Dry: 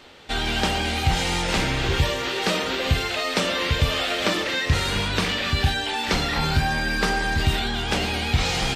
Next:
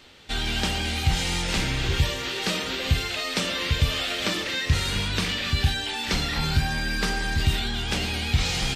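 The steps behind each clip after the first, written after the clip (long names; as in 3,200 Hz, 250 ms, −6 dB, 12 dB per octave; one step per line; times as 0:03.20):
parametric band 700 Hz −7.5 dB 2.8 octaves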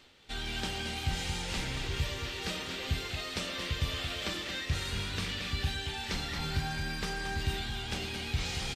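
reversed playback
upward compression, threshold −37 dBFS
reversed playback
tuned comb filter 390 Hz, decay 0.65 s, mix 50%
repeating echo 225 ms, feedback 51%, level −8 dB
level −4.5 dB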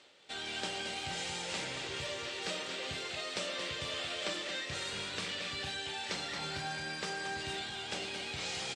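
loudspeaker in its box 220–9,100 Hz, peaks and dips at 240 Hz −6 dB, 580 Hz +6 dB, 7,900 Hz +4 dB
level −1.5 dB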